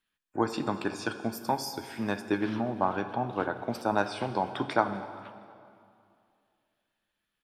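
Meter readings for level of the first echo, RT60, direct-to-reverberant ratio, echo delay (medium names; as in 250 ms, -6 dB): -21.5 dB, 2.4 s, 9.0 dB, 239 ms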